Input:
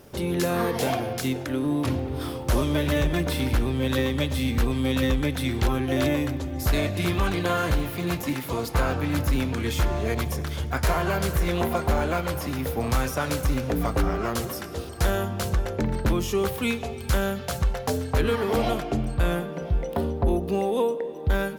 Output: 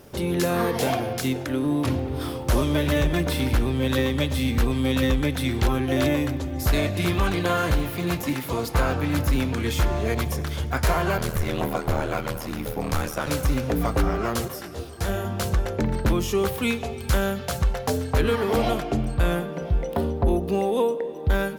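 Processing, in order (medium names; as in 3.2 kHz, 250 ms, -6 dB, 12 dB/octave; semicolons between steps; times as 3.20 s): 11.17–13.27 s: ring modulator 39 Hz; 14.48–15.25 s: detune thickener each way 28 cents; trim +1.5 dB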